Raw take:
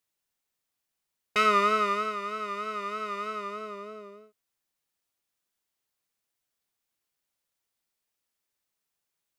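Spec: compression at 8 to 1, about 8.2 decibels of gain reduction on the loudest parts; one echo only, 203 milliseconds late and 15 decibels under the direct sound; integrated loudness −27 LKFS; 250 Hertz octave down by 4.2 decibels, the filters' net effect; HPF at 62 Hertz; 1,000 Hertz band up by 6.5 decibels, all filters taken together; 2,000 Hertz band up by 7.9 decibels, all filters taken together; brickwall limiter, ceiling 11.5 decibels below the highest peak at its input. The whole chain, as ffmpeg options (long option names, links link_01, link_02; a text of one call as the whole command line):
ffmpeg -i in.wav -af "highpass=62,equalizer=frequency=250:width_type=o:gain=-6,equalizer=frequency=1000:width_type=o:gain=5,equalizer=frequency=2000:width_type=o:gain=8.5,acompressor=threshold=-21dB:ratio=8,alimiter=limit=-22dB:level=0:latency=1,aecho=1:1:203:0.178,volume=4dB" out.wav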